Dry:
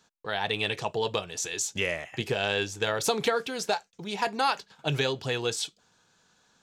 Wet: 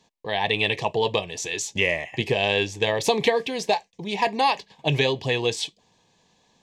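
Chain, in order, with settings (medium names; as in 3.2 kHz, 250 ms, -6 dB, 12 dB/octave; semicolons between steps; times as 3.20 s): low-pass 3.7 kHz 6 dB/octave; dynamic bell 2 kHz, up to +4 dB, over -42 dBFS, Q 0.84; Butterworth band-stop 1.4 kHz, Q 2.1; trim +5.5 dB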